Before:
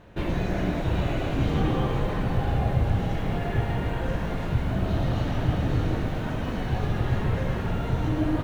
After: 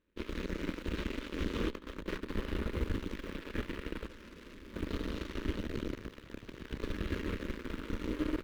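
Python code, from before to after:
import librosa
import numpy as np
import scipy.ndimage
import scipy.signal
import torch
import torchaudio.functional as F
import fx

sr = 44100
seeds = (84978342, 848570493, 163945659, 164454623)

y = fx.over_compress(x, sr, threshold_db=-27.0, ratio=-0.5, at=(1.7, 2.3))
y = fx.clip_hard(y, sr, threshold_db=-26.0, at=(4.07, 4.73), fade=0.02)
y = fx.cheby_harmonics(y, sr, harmonics=(7, 8), levels_db=(-16, -22), full_scale_db=-10.0)
y = fx.fixed_phaser(y, sr, hz=310.0, stages=4)
y = fx.ring_mod(y, sr, carrier_hz=34.0, at=(5.62, 6.8), fade=0.02)
y = y * 10.0 ** (-5.0 / 20.0)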